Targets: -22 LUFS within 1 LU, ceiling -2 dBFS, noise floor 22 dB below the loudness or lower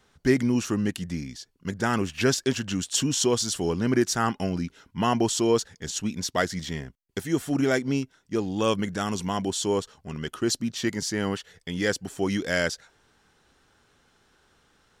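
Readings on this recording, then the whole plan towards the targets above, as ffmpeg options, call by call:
loudness -27.0 LUFS; peak -9.0 dBFS; loudness target -22.0 LUFS
-> -af "volume=5dB"

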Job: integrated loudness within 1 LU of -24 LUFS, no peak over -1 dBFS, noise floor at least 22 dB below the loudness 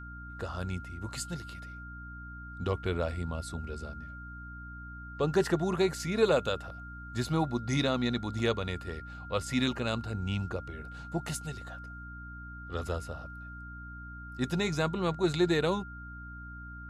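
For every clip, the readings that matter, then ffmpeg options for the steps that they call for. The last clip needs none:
hum 60 Hz; harmonics up to 300 Hz; hum level -43 dBFS; steady tone 1400 Hz; tone level -45 dBFS; loudness -32.5 LUFS; peak -13.5 dBFS; loudness target -24.0 LUFS
-> -af "bandreject=f=60:t=h:w=4,bandreject=f=120:t=h:w=4,bandreject=f=180:t=h:w=4,bandreject=f=240:t=h:w=4,bandreject=f=300:t=h:w=4"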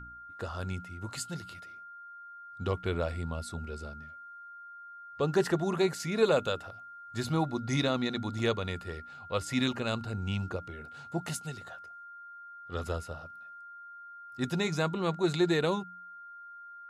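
hum none; steady tone 1400 Hz; tone level -45 dBFS
-> -af "bandreject=f=1.4k:w=30"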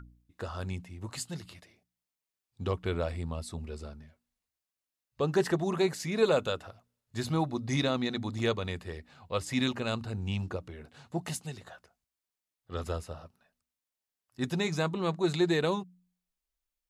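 steady tone none; loudness -32.5 LUFS; peak -13.5 dBFS; loudness target -24.0 LUFS
-> -af "volume=8.5dB"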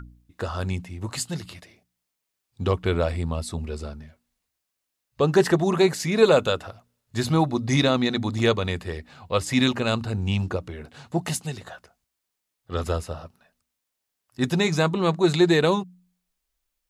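loudness -24.0 LUFS; peak -5.0 dBFS; noise floor -82 dBFS

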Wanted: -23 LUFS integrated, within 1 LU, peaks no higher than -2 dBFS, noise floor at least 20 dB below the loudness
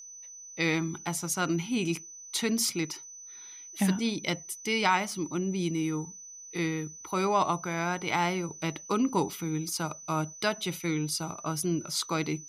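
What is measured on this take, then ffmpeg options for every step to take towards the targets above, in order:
steady tone 6000 Hz; tone level -44 dBFS; loudness -30.0 LUFS; peak -12.5 dBFS; loudness target -23.0 LUFS
-> -af "bandreject=f=6k:w=30"
-af "volume=7dB"

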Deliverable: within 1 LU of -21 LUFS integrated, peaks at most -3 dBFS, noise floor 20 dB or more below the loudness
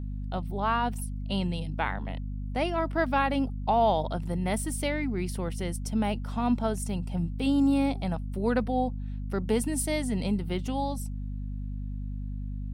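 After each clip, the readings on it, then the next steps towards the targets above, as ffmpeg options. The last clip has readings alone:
hum 50 Hz; harmonics up to 250 Hz; hum level -31 dBFS; loudness -29.5 LUFS; peak -12.5 dBFS; loudness target -21.0 LUFS
-> -af "bandreject=f=50:t=h:w=6,bandreject=f=100:t=h:w=6,bandreject=f=150:t=h:w=6,bandreject=f=200:t=h:w=6,bandreject=f=250:t=h:w=6"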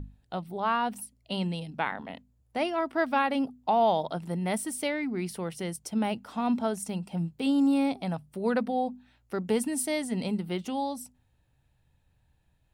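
hum none; loudness -30.0 LUFS; peak -13.5 dBFS; loudness target -21.0 LUFS
-> -af "volume=9dB"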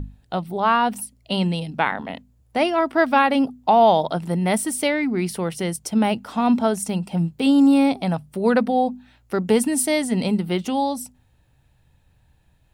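loudness -21.0 LUFS; peak -4.5 dBFS; noise floor -60 dBFS

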